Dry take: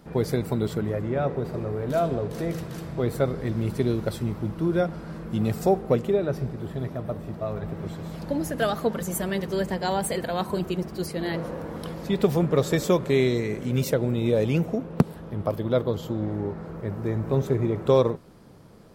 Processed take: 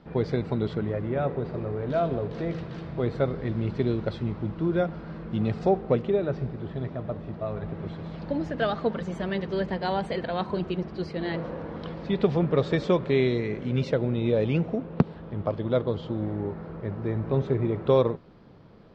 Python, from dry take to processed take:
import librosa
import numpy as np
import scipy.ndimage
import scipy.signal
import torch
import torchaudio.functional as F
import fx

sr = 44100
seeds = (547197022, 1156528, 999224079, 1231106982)

y = scipy.signal.sosfilt(scipy.signal.butter(4, 4200.0, 'lowpass', fs=sr, output='sos'), x)
y = y * 10.0 ** (-1.5 / 20.0)